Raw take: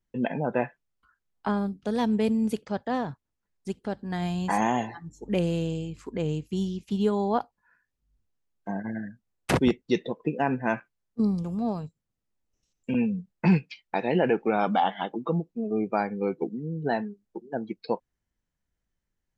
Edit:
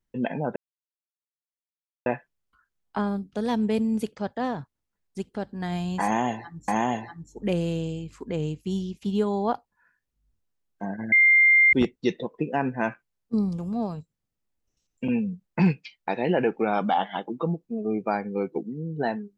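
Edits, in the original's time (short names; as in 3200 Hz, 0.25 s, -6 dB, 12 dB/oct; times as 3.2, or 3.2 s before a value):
0.56 insert silence 1.50 s
4.54–5.18 loop, 2 plays
8.98–9.59 bleep 2100 Hz -13.5 dBFS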